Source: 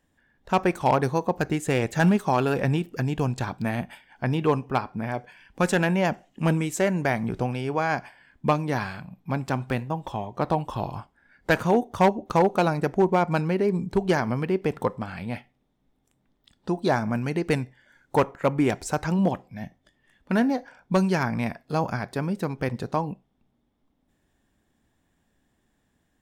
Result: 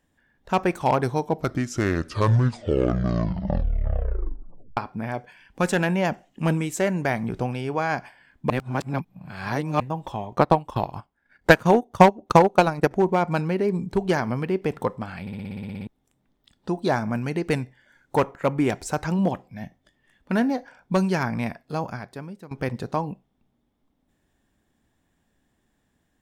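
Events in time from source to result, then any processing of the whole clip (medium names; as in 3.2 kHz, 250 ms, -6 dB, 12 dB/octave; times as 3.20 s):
0.92 s: tape stop 3.85 s
8.50–9.80 s: reverse
10.32–12.91 s: transient shaper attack +9 dB, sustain -10 dB
15.21 s: stutter in place 0.06 s, 11 plays
21.43–22.51 s: fade out, to -18 dB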